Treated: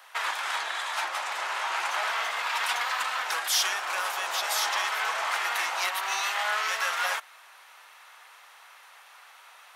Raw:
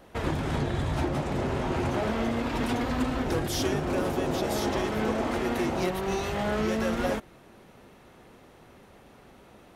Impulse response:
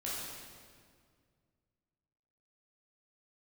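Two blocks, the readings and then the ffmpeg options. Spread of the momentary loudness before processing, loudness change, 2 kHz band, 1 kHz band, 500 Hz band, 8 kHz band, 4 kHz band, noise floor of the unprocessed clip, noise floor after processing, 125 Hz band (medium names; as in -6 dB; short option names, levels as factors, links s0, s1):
2 LU, +1.0 dB, +8.5 dB, +4.0 dB, -12.0 dB, +8.5 dB, +8.5 dB, -54 dBFS, -53 dBFS, under -40 dB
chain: -af "highpass=f=990:w=0.5412,highpass=f=990:w=1.3066,volume=2.66"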